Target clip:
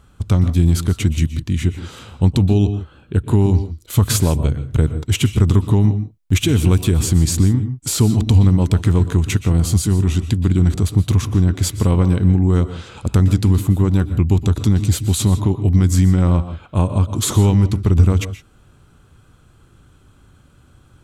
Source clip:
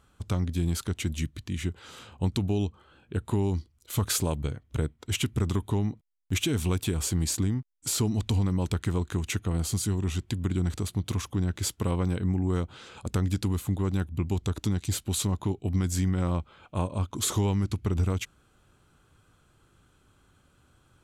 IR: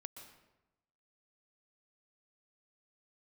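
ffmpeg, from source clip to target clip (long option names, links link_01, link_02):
-filter_complex "[0:a]asplit=2[link_01][link_02];[1:a]atrim=start_sample=2205,afade=type=out:start_time=0.22:duration=0.01,atrim=end_sample=10143,lowshelf=frequency=300:gain=10.5[link_03];[link_02][link_03]afir=irnorm=-1:irlink=0,volume=8.5dB[link_04];[link_01][link_04]amix=inputs=2:normalize=0"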